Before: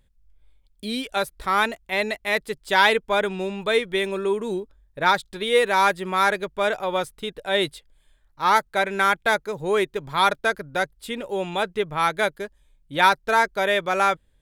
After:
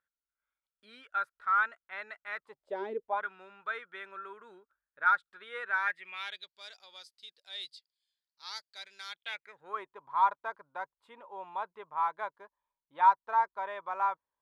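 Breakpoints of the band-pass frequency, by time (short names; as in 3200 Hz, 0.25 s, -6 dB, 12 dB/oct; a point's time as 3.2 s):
band-pass, Q 7.9
2.37 s 1400 Hz
2.92 s 290 Hz
3.24 s 1400 Hz
5.7 s 1400 Hz
6.58 s 4700 Hz
9.04 s 4700 Hz
9.84 s 1000 Hz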